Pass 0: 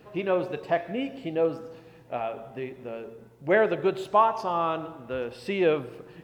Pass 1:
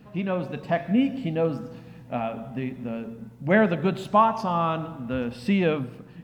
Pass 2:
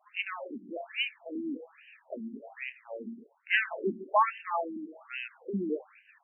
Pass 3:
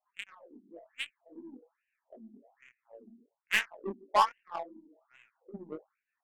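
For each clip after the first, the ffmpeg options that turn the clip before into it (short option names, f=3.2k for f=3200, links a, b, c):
-af "lowshelf=f=290:t=q:w=3:g=6.5,bandreject=f=50:t=h:w=6,bandreject=f=100:t=h:w=6,bandreject=f=150:t=h:w=6,dynaudnorm=f=140:g=9:m=4dB,volume=-1.5dB"
-af "aeval=exprs='(tanh(5.62*val(0)+0.5)-tanh(0.5))/5.62':c=same,aexciter=amount=3.7:drive=5.6:freq=2.1k,afftfilt=real='re*between(b*sr/1024,250*pow(2200/250,0.5+0.5*sin(2*PI*1.2*pts/sr))/1.41,250*pow(2200/250,0.5+0.5*sin(2*PI*1.2*pts/sr))*1.41)':imag='im*between(b*sr/1024,250*pow(2200/250,0.5+0.5*sin(2*PI*1.2*pts/sr))/1.41,250*pow(2200/250,0.5+0.5*sin(2*PI*1.2*pts/sr))*1.41)':win_size=1024:overlap=0.75"
-af "aeval=exprs='0.282*(cos(1*acos(clip(val(0)/0.282,-1,1)))-cos(1*PI/2))+0.01*(cos(2*acos(clip(val(0)/0.282,-1,1)))-cos(2*PI/2))+0.0316*(cos(7*acos(clip(val(0)/0.282,-1,1)))-cos(7*PI/2))':c=same,flanger=delay=17.5:depth=7.8:speed=2.7,adynamicsmooth=sensitivity=5.5:basefreq=990,volume=3dB"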